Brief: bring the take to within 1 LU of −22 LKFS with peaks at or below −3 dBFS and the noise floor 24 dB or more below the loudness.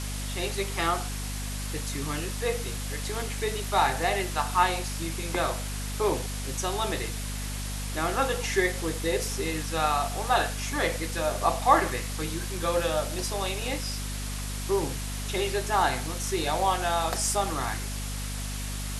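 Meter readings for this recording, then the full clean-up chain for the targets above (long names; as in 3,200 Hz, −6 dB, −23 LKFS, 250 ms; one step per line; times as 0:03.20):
mains hum 50 Hz; hum harmonics up to 250 Hz; level of the hum −32 dBFS; background noise floor −33 dBFS; target noise floor −53 dBFS; integrated loudness −28.5 LKFS; sample peak −6.0 dBFS; target loudness −22.0 LKFS
→ mains-hum notches 50/100/150/200/250 Hz
noise reduction from a noise print 20 dB
level +6.5 dB
brickwall limiter −3 dBFS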